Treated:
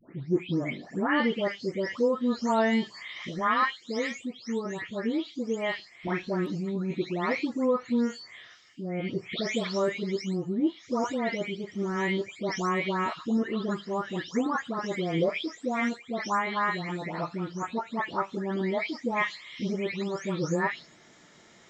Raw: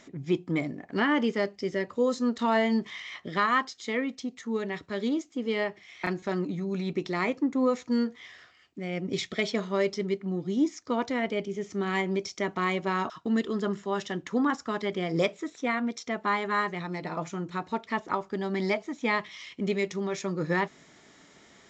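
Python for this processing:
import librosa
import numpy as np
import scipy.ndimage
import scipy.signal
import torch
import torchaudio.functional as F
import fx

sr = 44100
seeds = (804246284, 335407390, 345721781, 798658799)

y = fx.spec_delay(x, sr, highs='late', ms=394)
y = F.gain(torch.from_numpy(y), 1.0).numpy()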